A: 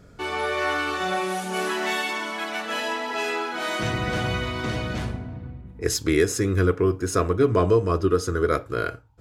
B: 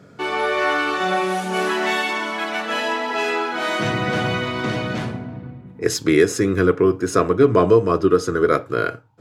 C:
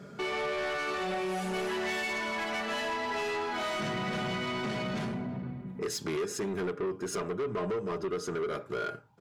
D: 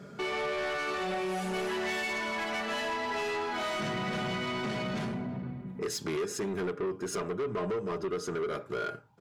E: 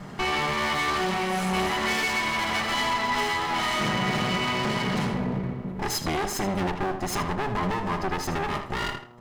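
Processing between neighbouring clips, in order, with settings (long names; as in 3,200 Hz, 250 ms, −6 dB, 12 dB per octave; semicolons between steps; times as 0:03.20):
high-pass filter 120 Hz 24 dB per octave; high-shelf EQ 5,700 Hz −8 dB; level +5.5 dB
comb filter 5 ms, depth 59%; downward compressor 2.5 to 1, threshold −27 dBFS, peak gain reduction 13.5 dB; soft clipping −26.5 dBFS, distortion −10 dB; level −2 dB
no processing that can be heard
lower of the sound and its delayed copy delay 0.97 ms; hum with harmonics 120 Hz, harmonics 11, −59 dBFS; tape delay 78 ms, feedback 27%, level −8 dB, low-pass 5,600 Hz; level +8.5 dB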